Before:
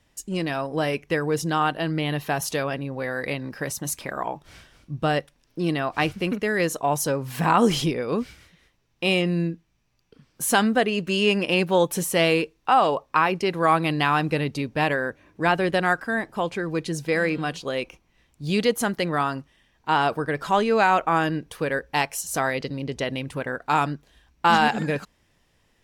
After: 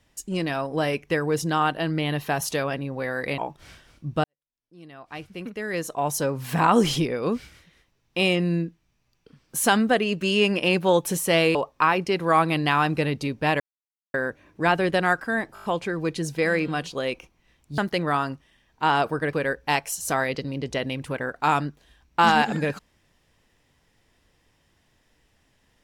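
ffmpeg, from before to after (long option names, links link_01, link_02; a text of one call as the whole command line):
ffmpeg -i in.wav -filter_complex "[0:a]asplit=12[link_01][link_02][link_03][link_04][link_05][link_06][link_07][link_08][link_09][link_10][link_11][link_12];[link_01]atrim=end=3.382[link_13];[link_02]atrim=start=4.238:end=5.1,asetpts=PTS-STARTPTS,afade=type=out:start_time=0.858:duration=0.004:curve=hsin[link_14];[link_03]atrim=start=5.1:end=12.412,asetpts=PTS-STARTPTS,afade=type=in:duration=2.08:curve=qua[link_15];[link_04]atrim=start=12.888:end=14.94,asetpts=PTS-STARTPTS,afade=type=out:start_time=2.048:duration=0.004:curve=hsin,apad=pad_dur=0.54[link_16];[link_05]atrim=start=14.94:end=16.362,asetpts=PTS-STARTPTS,afade=type=in:duration=0.004:curve=hsin[link_17];[link_06]atrim=start=16.338:end=16.362[link_18];[link_07]atrim=start=16.338:end=16.362[link_19];[link_08]atrim=start=16.338:end=16.362[link_20];[link_09]atrim=start=16.338:end=16.362[link_21];[link_10]atrim=start=16.338:end=18.482[link_22];[link_11]atrim=start=18.838:end=20.392[link_23];[link_12]atrim=start=21.588[link_24];[link_14][link_15]concat=n=2:v=0:a=1[link_25];[link_13][link_25]acrossfade=duration=0.004:curve1=hsin:curve2=hsin[link_26];[link_16][link_17]concat=n=2:v=0:a=1[link_27];[link_26][link_27]acrossfade=duration=0.004:curve1=hsin:curve2=hsin[link_28];[link_28][link_18]acrossfade=duration=0.004:curve1=hsin:curve2=hsin[link_29];[link_29][link_19]acrossfade=duration=0.004:curve1=hsin:curve2=hsin[link_30];[link_30][link_20]acrossfade=duration=0.004:curve1=hsin:curve2=hsin[link_31];[link_31][link_21]acrossfade=duration=0.004:curve1=hsin:curve2=hsin[link_32];[link_32][link_22]acrossfade=duration=0.004:curve1=hsin:curve2=hsin[link_33];[link_33][link_23]acrossfade=duration=0.004:curve1=hsin:curve2=hsin[link_34];[link_34][link_24]acrossfade=duration=0.004:curve1=hsin:curve2=hsin" out.wav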